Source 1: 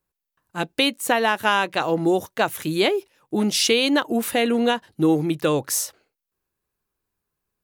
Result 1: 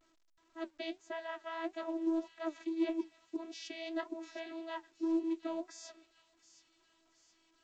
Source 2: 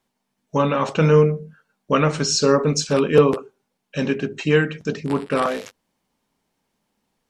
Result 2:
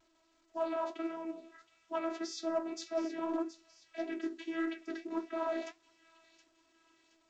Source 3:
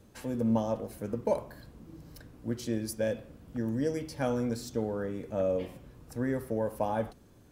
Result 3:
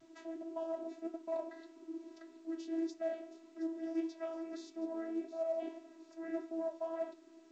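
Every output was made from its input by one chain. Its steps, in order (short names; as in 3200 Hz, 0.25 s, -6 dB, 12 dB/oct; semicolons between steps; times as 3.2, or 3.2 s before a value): dynamic EQ 230 Hz, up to -3 dB, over -34 dBFS, Q 0.85; reverse; compressor 4:1, threshold -36 dBFS; reverse; vocoder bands 16, saw 327 Hz; soft clip -24.5 dBFS; flange 1.7 Hz, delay 7.1 ms, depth 5.1 ms, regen +56%; on a send: thin delay 0.721 s, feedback 46%, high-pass 3100 Hz, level -12.5 dB; on the sum: gain +5 dB; A-law 128 kbps 16000 Hz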